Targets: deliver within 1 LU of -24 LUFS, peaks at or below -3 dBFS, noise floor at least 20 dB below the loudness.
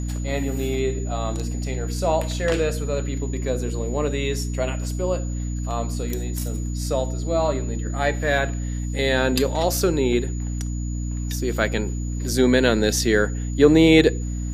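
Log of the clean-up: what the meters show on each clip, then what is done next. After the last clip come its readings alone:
hum 60 Hz; harmonics up to 300 Hz; hum level -24 dBFS; steady tone 6900 Hz; tone level -41 dBFS; loudness -22.5 LUFS; peak -2.0 dBFS; loudness target -24.0 LUFS
-> de-hum 60 Hz, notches 5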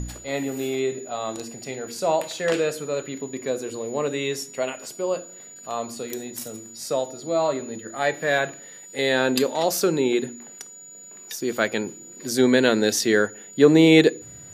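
hum none; steady tone 6900 Hz; tone level -41 dBFS
-> notch 6900 Hz, Q 30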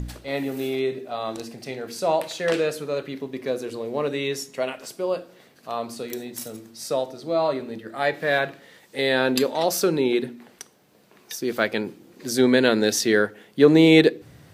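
steady tone none; loudness -23.0 LUFS; peak -3.0 dBFS; loudness target -24.0 LUFS
-> gain -1 dB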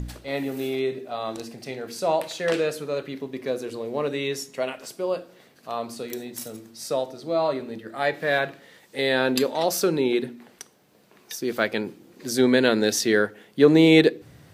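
loudness -24.0 LUFS; peak -4.0 dBFS; noise floor -56 dBFS

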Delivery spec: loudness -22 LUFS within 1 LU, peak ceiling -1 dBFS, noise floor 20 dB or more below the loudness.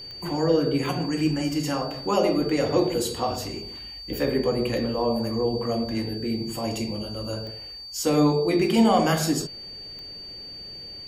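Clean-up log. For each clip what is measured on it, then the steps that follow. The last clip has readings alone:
clicks 4; steady tone 4600 Hz; tone level -37 dBFS; loudness -25.0 LUFS; peak -8.0 dBFS; loudness target -22.0 LUFS
-> de-click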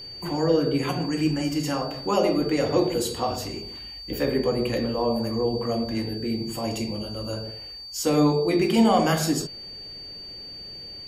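clicks 0; steady tone 4600 Hz; tone level -37 dBFS
-> notch 4600 Hz, Q 30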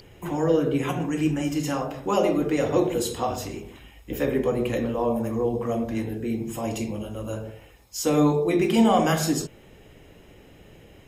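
steady tone none; loudness -25.0 LUFS; peak -8.0 dBFS; loudness target -22.0 LUFS
-> gain +3 dB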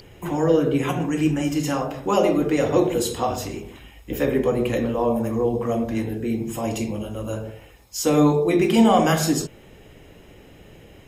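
loudness -22.0 LUFS; peak -5.0 dBFS; noise floor -48 dBFS

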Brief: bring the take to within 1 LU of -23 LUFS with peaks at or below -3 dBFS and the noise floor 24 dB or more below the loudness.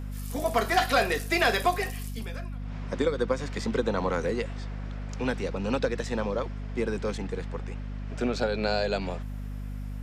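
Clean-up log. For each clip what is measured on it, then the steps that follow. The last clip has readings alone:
hum 50 Hz; harmonics up to 250 Hz; hum level -33 dBFS; loudness -29.5 LUFS; peak -12.0 dBFS; loudness target -23.0 LUFS
-> de-hum 50 Hz, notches 5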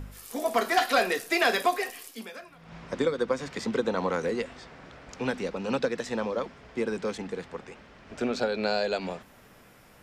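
hum none; loudness -29.0 LUFS; peak -11.5 dBFS; loudness target -23.0 LUFS
-> gain +6 dB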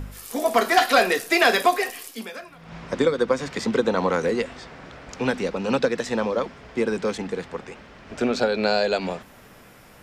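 loudness -23.0 LUFS; peak -5.5 dBFS; noise floor -49 dBFS

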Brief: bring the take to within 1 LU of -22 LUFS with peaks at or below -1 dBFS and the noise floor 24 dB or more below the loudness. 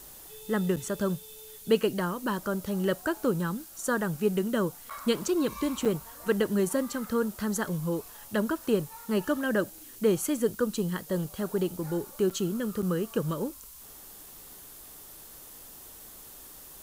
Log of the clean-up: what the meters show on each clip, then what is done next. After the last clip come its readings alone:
dropouts 5; longest dropout 6.5 ms; noise floor -48 dBFS; noise floor target -54 dBFS; loudness -29.5 LUFS; peak -11.5 dBFS; loudness target -22.0 LUFS
-> interpolate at 0.76/4.9/5.85/12.3/12.82, 6.5 ms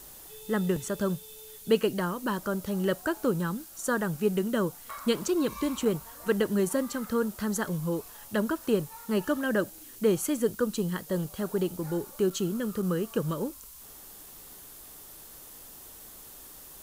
dropouts 0; noise floor -48 dBFS; noise floor target -54 dBFS
-> denoiser 6 dB, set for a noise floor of -48 dBFS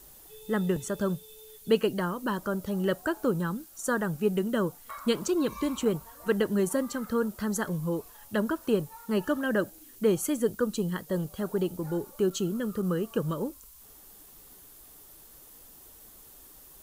noise floor -52 dBFS; noise floor target -54 dBFS
-> denoiser 6 dB, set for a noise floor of -52 dBFS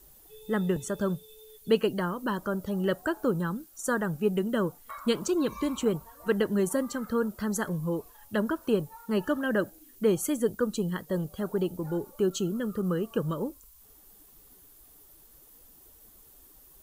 noise floor -56 dBFS; loudness -30.0 LUFS; peak -11.5 dBFS; loudness target -22.0 LUFS
-> gain +8 dB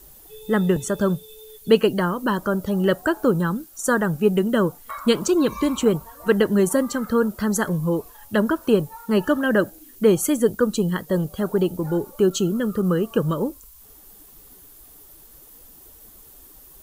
loudness -22.0 LUFS; peak -3.5 dBFS; noise floor -48 dBFS

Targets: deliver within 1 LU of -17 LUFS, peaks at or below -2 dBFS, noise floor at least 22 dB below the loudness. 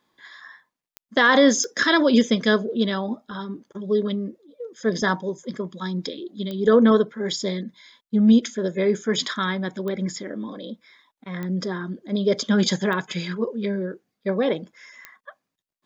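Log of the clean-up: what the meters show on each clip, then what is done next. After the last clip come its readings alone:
clicks 7; loudness -22.5 LUFS; peak -4.5 dBFS; loudness target -17.0 LUFS
-> de-click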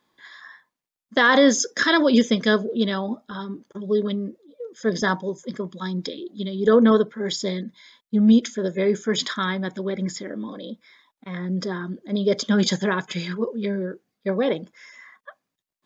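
clicks 0; loudness -22.5 LUFS; peak -4.5 dBFS; loudness target -17.0 LUFS
-> gain +5.5 dB; limiter -2 dBFS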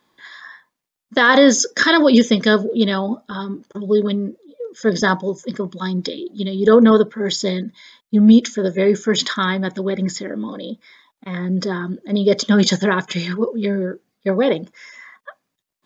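loudness -17.5 LUFS; peak -2.0 dBFS; noise floor -79 dBFS

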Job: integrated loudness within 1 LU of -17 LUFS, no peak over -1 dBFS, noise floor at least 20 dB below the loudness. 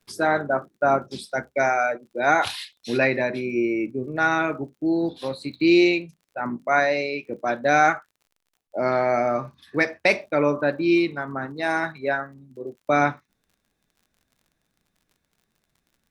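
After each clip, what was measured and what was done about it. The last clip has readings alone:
ticks 47/s; loudness -23.0 LUFS; peak -5.0 dBFS; loudness target -17.0 LUFS
-> de-click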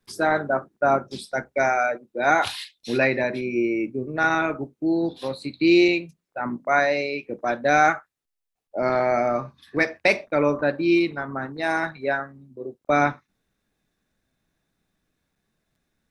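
ticks 0.12/s; loudness -23.0 LUFS; peak -5.0 dBFS; loudness target -17.0 LUFS
-> gain +6 dB; limiter -1 dBFS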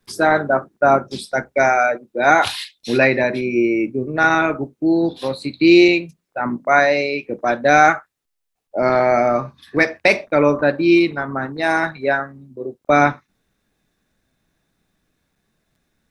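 loudness -17.0 LUFS; peak -1.0 dBFS; noise floor -76 dBFS

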